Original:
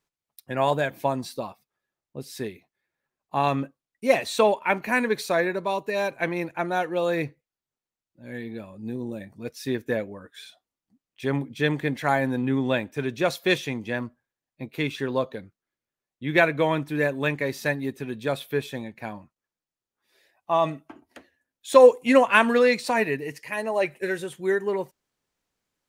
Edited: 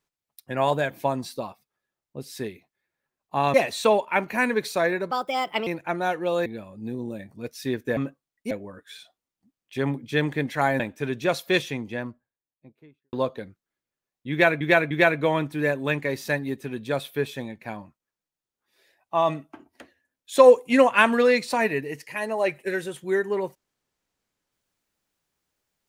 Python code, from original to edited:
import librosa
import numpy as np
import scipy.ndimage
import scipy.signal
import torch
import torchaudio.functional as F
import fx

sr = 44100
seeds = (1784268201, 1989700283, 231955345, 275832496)

y = fx.studio_fade_out(x, sr, start_s=13.48, length_s=1.61)
y = fx.edit(y, sr, fx.move(start_s=3.54, length_s=0.54, to_s=9.98),
    fx.speed_span(start_s=5.65, length_s=0.72, speed=1.29),
    fx.cut(start_s=7.16, length_s=1.31),
    fx.cut(start_s=12.27, length_s=0.49),
    fx.repeat(start_s=16.27, length_s=0.3, count=3), tone=tone)